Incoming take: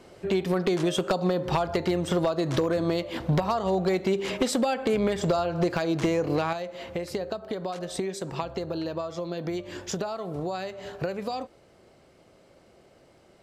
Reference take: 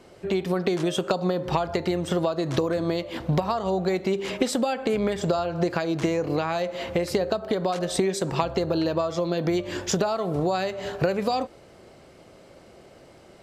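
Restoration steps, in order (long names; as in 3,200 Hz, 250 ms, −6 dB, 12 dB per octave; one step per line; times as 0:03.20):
clipped peaks rebuilt −17 dBFS
level correction +7 dB, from 0:06.53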